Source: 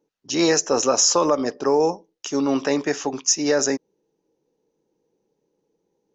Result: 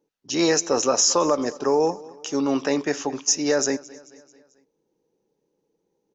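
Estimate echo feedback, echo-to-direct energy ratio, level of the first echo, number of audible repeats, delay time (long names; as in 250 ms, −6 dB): 52%, −19.5 dB, −21.0 dB, 3, 220 ms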